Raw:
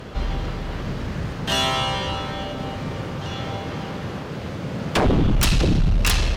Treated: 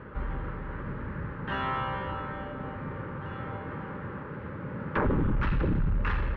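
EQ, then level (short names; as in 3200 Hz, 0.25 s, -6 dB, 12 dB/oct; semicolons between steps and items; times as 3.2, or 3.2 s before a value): Butterworth band-stop 700 Hz, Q 4; ladder low-pass 1900 Hz, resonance 40%; 0.0 dB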